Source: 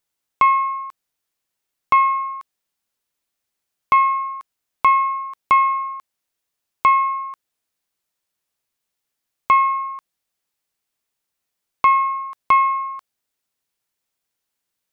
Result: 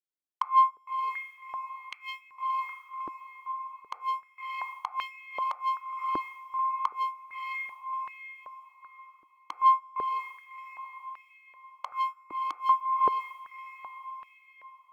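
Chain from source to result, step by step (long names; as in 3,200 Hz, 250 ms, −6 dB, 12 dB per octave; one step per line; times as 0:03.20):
mu-law and A-law mismatch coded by mu
noise gate −19 dBFS, range −33 dB
feedback delay with all-pass diffusion 620 ms, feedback 41%, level −15 dB
downward compressor, threshold −21 dBFS, peak gain reduction 10 dB
gate with flip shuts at −16 dBFS, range −32 dB
frequency shifter −26 Hz
convolution reverb RT60 0.65 s, pre-delay 3 ms, DRR 17.5 dB
soft clipping −24 dBFS, distortion −15 dB
high-pass on a step sequencer 2.6 Hz 320–2,400 Hz
level −1 dB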